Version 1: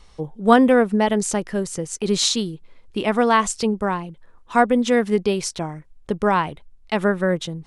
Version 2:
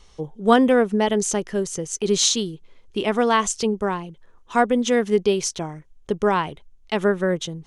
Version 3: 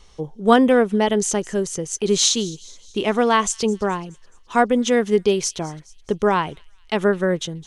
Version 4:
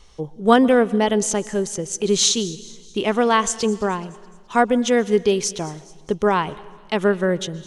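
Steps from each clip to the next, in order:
thirty-one-band EQ 400 Hz +5 dB, 3150 Hz +5 dB, 6300 Hz +8 dB; gain -2.5 dB
thin delay 0.212 s, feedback 50%, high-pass 3600 Hz, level -18.5 dB; gain +1.5 dB
reverb RT60 1.4 s, pre-delay 0.115 s, DRR 19 dB

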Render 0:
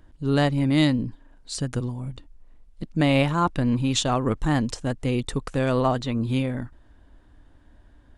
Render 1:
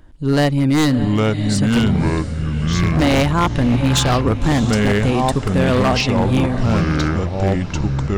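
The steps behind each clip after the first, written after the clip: diffused feedback echo 0.62 s, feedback 43%, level -13 dB; echoes that change speed 0.682 s, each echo -5 st, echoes 3; wavefolder -15 dBFS; gain +6.5 dB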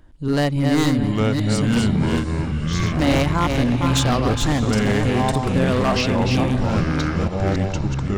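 reverse delay 0.28 s, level -4.5 dB; gain -4 dB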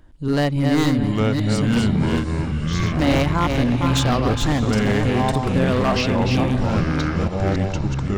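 dynamic EQ 9000 Hz, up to -4 dB, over -42 dBFS, Q 0.8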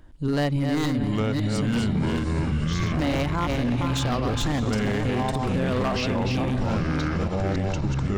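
limiter -17 dBFS, peak gain reduction 8.5 dB

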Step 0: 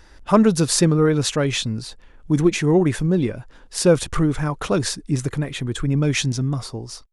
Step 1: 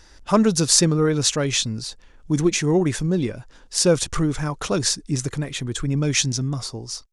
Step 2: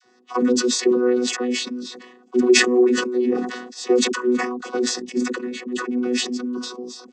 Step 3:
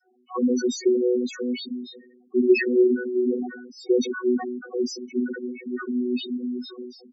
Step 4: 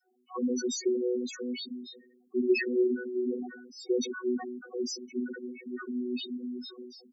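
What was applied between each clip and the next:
bell 6100 Hz +9 dB 1.3 oct; gain -2.5 dB
chord vocoder bare fifth, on B3; dispersion lows, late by 42 ms, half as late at 600 Hz; sustainer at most 54 dB/s
loudest bins only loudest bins 4; gain -2 dB
high shelf 4900 Hz +12 dB; gain -8 dB

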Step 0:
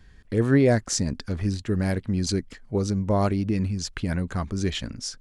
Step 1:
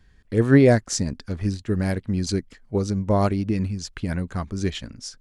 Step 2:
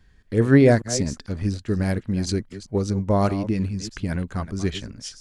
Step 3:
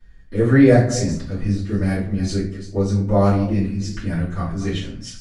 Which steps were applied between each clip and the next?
upward expander 1.5:1, over -34 dBFS; gain +5 dB
reverse delay 0.205 s, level -13 dB
reverb RT60 0.50 s, pre-delay 3 ms, DRR -12.5 dB; gain -11 dB

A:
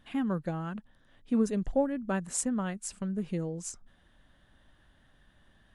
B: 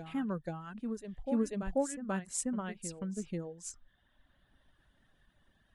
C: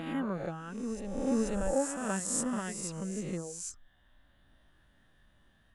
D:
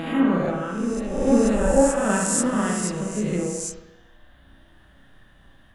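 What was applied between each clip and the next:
reverb removal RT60 1.1 s; reverse echo 0.487 s -7 dB; gain -4 dB
spectral swells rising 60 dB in 1.18 s
spring tank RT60 1 s, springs 33/51 ms, chirp 65 ms, DRR -1 dB; gain +9 dB

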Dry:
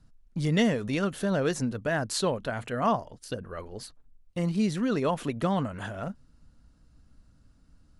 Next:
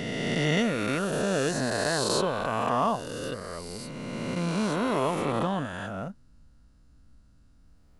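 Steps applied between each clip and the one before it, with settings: spectral swells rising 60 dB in 2.93 s; gain -4 dB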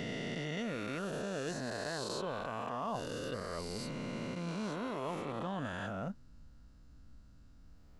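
bell 9600 Hz -10 dB 0.31 oct; reverse; compressor 6:1, threshold -36 dBFS, peak gain reduction 14.5 dB; reverse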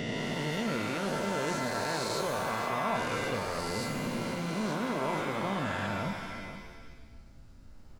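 echo 0.474 s -12 dB; shimmer reverb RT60 1.1 s, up +7 st, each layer -2 dB, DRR 6 dB; gain +4.5 dB

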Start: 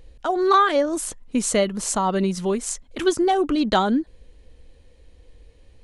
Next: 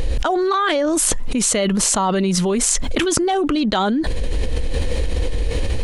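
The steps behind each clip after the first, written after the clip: dynamic EQ 3000 Hz, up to +4 dB, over -38 dBFS, Q 0.96; fast leveller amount 100%; gain -5 dB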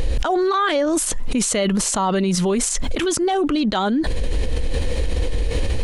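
limiter -11.5 dBFS, peak gain reduction 10 dB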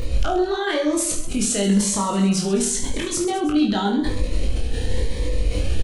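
doubler 20 ms -4 dB; reverse bouncing-ball echo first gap 30 ms, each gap 1.4×, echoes 5; cascading phaser rising 0.93 Hz; gain -4 dB

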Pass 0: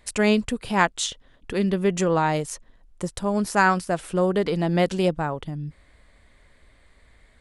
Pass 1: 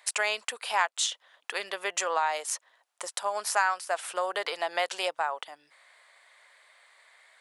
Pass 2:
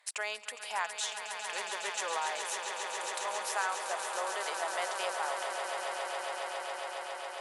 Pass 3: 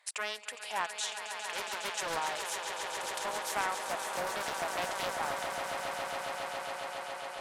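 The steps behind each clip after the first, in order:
HPF 700 Hz 24 dB/oct; compressor 2.5:1, threshold -29 dBFS, peak gain reduction 10.5 dB; gain +3.5 dB
added harmonics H 5 -33 dB, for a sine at -9 dBFS; swelling echo 0.137 s, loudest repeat 8, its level -9.5 dB; gain -9 dB
Doppler distortion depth 0.64 ms

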